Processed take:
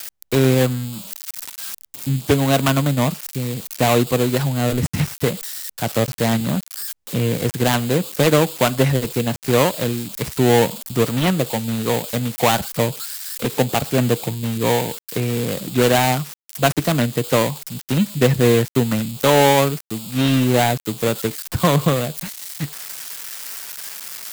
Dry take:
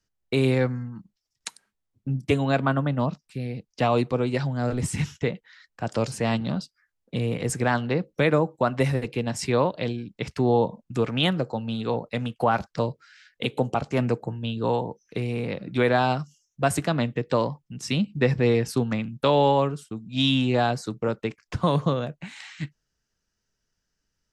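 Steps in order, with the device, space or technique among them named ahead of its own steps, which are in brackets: budget class-D amplifier (dead-time distortion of 0.26 ms; zero-crossing glitches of -19.5 dBFS); trim +6.5 dB

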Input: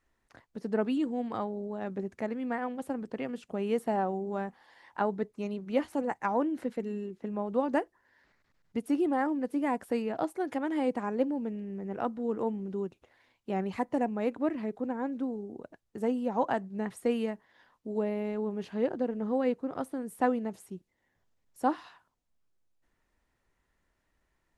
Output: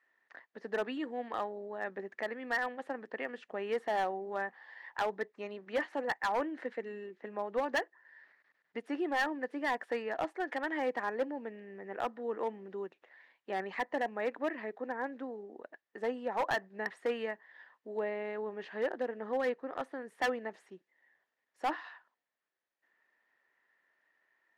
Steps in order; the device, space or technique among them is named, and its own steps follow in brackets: megaphone (band-pass 470–3600 Hz; peaking EQ 1.8 kHz +12 dB 0.29 oct; hard clipper -26 dBFS, distortion -12 dB)

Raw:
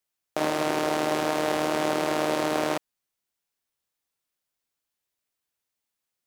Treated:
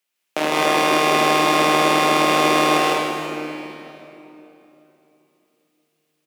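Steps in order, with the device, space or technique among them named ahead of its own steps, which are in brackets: stadium PA (high-pass 160 Hz 24 dB/octave; peaking EQ 2.6 kHz +7.5 dB 0.9 oct; loudspeakers at several distances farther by 54 m -1 dB, 71 m -4 dB; reverberation RT60 3.2 s, pre-delay 70 ms, DRR 2 dB); trim +3.5 dB

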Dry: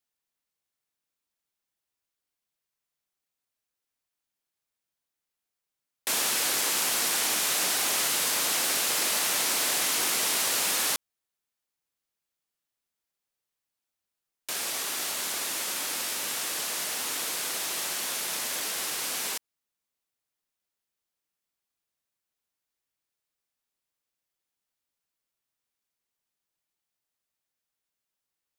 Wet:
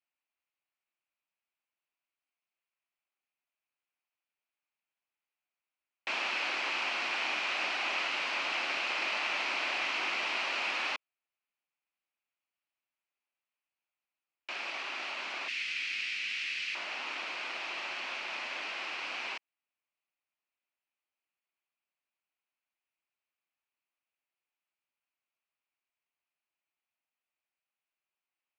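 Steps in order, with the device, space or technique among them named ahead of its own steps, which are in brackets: 15.48–16.75 s: FFT filter 140 Hz 0 dB, 860 Hz -26 dB, 2 kHz +4 dB; phone earpiece (cabinet simulation 370–3700 Hz, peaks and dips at 460 Hz -9 dB, 1.7 kHz -3 dB, 2.5 kHz +7 dB, 3.6 kHz -7 dB); trim -1.5 dB

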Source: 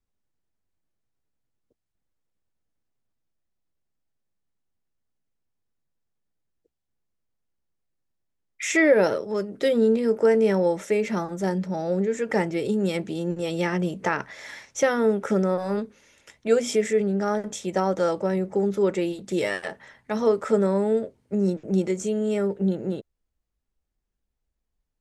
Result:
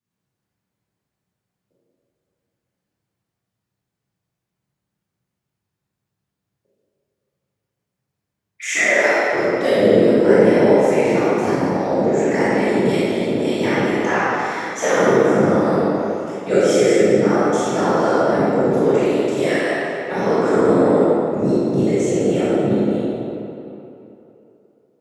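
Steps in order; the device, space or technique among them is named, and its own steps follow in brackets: 8.70–9.33 s: high-pass 700 Hz 12 dB/octave; whispering ghost (whisper effect; high-pass 200 Hz 12 dB/octave; reverberation RT60 3.0 s, pre-delay 20 ms, DRR -10.5 dB); trim -2 dB

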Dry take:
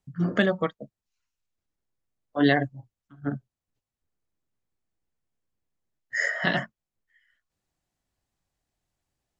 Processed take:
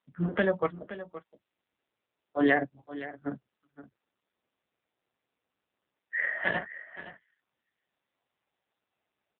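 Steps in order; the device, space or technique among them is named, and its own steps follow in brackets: dynamic bell 170 Hz, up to +6 dB, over -43 dBFS, Q 4.7; satellite phone (band-pass 310–3300 Hz; delay 520 ms -14.5 dB; AMR-NB 5.9 kbps 8 kHz)

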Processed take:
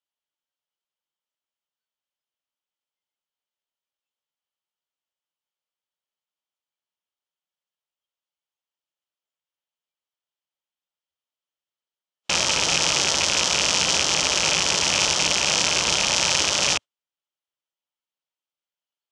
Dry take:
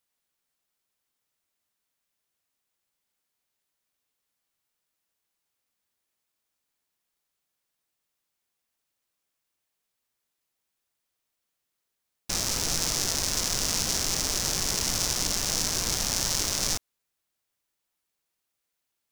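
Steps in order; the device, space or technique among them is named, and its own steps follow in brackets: car door speaker with a rattle (rattle on loud lows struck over -36 dBFS, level -19 dBFS; cabinet simulation 99–7500 Hz, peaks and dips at 110 Hz -9 dB, 240 Hz -6 dB, 570 Hz +6 dB, 900 Hz +6 dB, 1.3 kHz +4 dB, 3.1 kHz +10 dB); spectral noise reduction 18 dB; trim +5.5 dB

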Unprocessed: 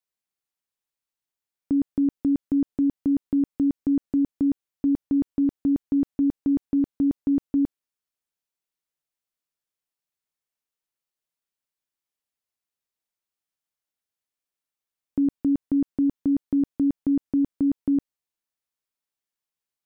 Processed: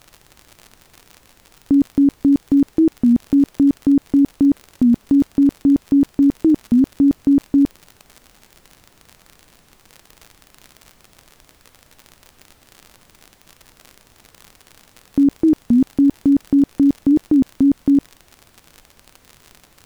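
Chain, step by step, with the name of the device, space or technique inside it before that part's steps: warped LP (warped record 33 1/3 rpm, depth 250 cents; crackle 56 per s -35 dBFS; pink noise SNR 35 dB); trim +8.5 dB

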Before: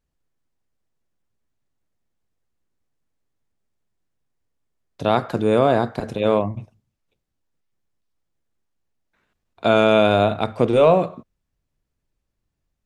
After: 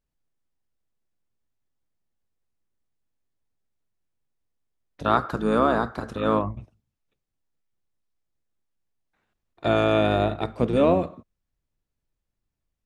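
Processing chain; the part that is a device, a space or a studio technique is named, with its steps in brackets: octave pedal (harmony voices -12 st -5 dB); 5.05–6.51 s: FFT filter 730 Hz 0 dB, 1.3 kHz +12 dB, 2.1 kHz -2 dB, 4 kHz +2 dB; trim -6.5 dB

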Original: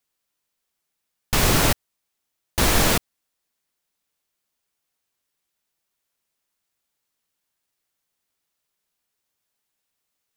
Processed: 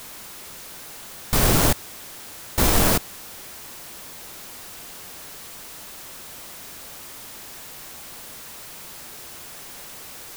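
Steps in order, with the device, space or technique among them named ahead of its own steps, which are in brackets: early CD player with a faulty converter (jump at every zero crossing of -31.5 dBFS; sampling jitter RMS 0.11 ms)

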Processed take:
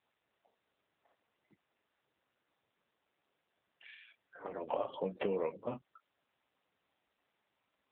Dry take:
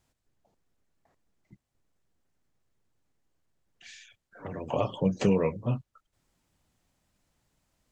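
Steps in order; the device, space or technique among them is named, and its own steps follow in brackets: voicemail (band-pass 400–3100 Hz; compression 8:1, threshold -30 dBFS, peak gain reduction 7.5 dB; AMR-NB 7.4 kbps 8 kHz)

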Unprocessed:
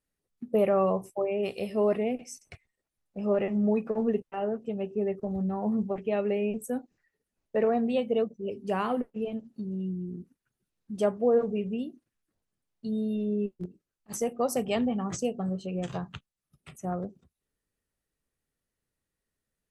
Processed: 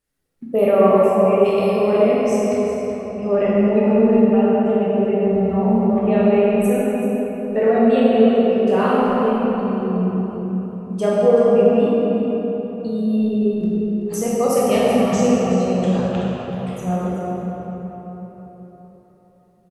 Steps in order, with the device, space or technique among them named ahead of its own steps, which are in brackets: cave (delay 380 ms -11.5 dB; reverberation RT60 4.2 s, pre-delay 18 ms, DRR -7.5 dB); trim +4 dB

